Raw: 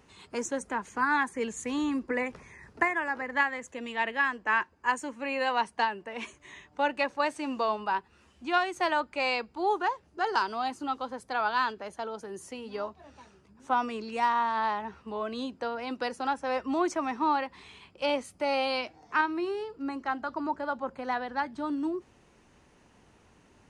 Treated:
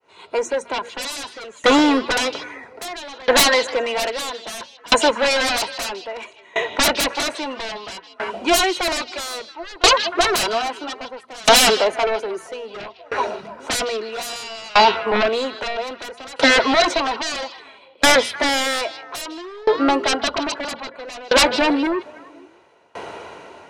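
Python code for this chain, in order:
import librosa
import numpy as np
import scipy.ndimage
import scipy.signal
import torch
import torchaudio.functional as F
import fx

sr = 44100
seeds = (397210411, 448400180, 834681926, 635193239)

p1 = fx.fade_in_head(x, sr, length_s=1.28)
p2 = scipy.signal.sosfilt(scipy.signal.butter(2, 100.0, 'highpass', fs=sr, output='sos'), p1)
p3 = fx.bass_treble(p2, sr, bass_db=-14, treble_db=-12)
p4 = fx.notch(p3, sr, hz=1800.0, q=12.0)
p5 = p4 + 0.43 * np.pad(p4, (int(2.1 * sr / 1000.0), 0))[:len(p4)]
p6 = fx.rider(p5, sr, range_db=4, speed_s=2.0)
p7 = p5 + F.gain(torch.from_numpy(p6), 3.0).numpy()
p8 = fx.fold_sine(p7, sr, drive_db=20, ceiling_db=-5.0)
p9 = fx.hum_notches(p8, sr, base_hz=60, count=4)
p10 = fx.small_body(p9, sr, hz=(680.0, 4000.0), ring_ms=65, db=13)
p11 = p10 + fx.echo_stepped(p10, sr, ms=156, hz=3700.0, octaves=-1.4, feedback_pct=70, wet_db=-6, dry=0)
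p12 = fx.tremolo_decay(p11, sr, direction='decaying', hz=0.61, depth_db=27)
y = F.gain(torch.from_numpy(p12), -3.5).numpy()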